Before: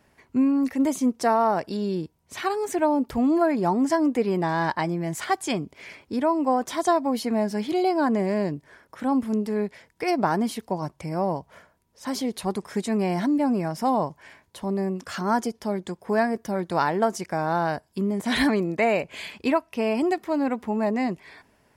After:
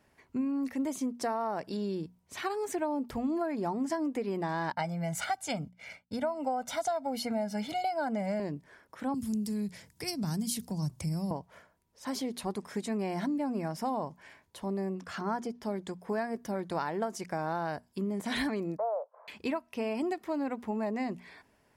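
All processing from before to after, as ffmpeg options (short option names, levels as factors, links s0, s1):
-filter_complex "[0:a]asettb=1/sr,asplit=3[s0][s1][s2];[s0]atrim=end=4.724[s3];[s1]atrim=start=4.72:end=8.4,asetpts=PTS-STARTPTS,afade=t=in:d=0.004:c=qsin,afade=t=out:st=3.676:d=0.004:c=qsin,aecho=1:1:1.4:0.95,atrim=end_sample=162288,agate=range=0.0224:threshold=0.0141:ratio=3:release=100:detection=peak[s4];[s2]atrim=start=8.396[s5];[s3][s4]acrossfade=d=0.004:c1=hsin:c2=qsin[s6];[s6][s5]acrossfade=d=0.004:c1=qsin:c2=hsin,asettb=1/sr,asplit=3[s7][s8][s9];[s7]atrim=end=9.144[s10];[s8]atrim=start=9.14:end=11.31,asetpts=PTS-STARTPTS,afade=t=in:d=0.004:c=qsin,afade=t=out:st=2.166:d=0.004:c=qsin,highpass=70,bass=f=250:g=14,treble=f=4000:g=13,acrossover=split=180|3000[s11][s12][s13];[s12]acompressor=threshold=0.0178:ratio=4:attack=3.2:release=140:knee=2.83:detection=peak[s14];[s11][s14][s13]amix=inputs=3:normalize=0[s15];[s9]atrim=start=11.306[s16];[s10][s15]acrossfade=d=0.004:c1=hsin:c2=qsin[s17];[s17][s16]acrossfade=d=0.004:c1=qsin:c2=hsin,asettb=1/sr,asplit=3[s18][s19][s20];[s18]atrim=end=14.954[s21];[s19]atrim=start=14.95:end=15.63,asetpts=PTS-STARTPTS,afade=t=in:d=0.004:c=qsin,afade=t=out:st=0.676:d=0.004:c=qsin,aemphasis=mode=reproduction:type=cd,bandreject=f=560:w=12[s22];[s20]atrim=start=15.626[s23];[s21][s22]acrossfade=d=0.004:c1=hsin:c2=qsin[s24];[s24][s23]acrossfade=d=0.004:c1=qsin:c2=hsin,asettb=1/sr,asplit=3[s25][s26][s27];[s25]atrim=end=18.774[s28];[s26]atrim=start=18.77:end=19.28,asetpts=PTS-STARTPTS,afade=t=in:d=0.004:c=qsin,afade=t=out:st=0.506:d=0.004:c=qsin,agate=range=0.0224:threshold=0.01:ratio=3:release=100:detection=peak,asuperpass=centerf=800:order=12:qfactor=0.96[s29];[s27]atrim=start=19.276[s30];[s28][s29]acrossfade=d=0.004:c1=hsin:c2=qsin[s31];[s31][s30]acrossfade=d=0.004:c1=qsin:c2=hsin,acompressor=threshold=0.0708:ratio=6,bandreject=f=60:t=h:w=6,bandreject=f=120:t=h:w=6,bandreject=f=180:t=h:w=6,bandreject=f=240:t=h:w=6,volume=0.531"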